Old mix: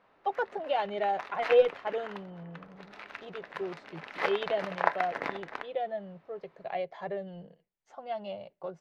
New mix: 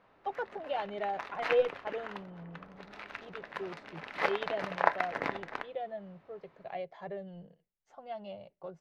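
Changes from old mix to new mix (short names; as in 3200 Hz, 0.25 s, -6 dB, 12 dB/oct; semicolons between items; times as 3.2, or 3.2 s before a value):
speech -6.0 dB; master: add low shelf 160 Hz +8 dB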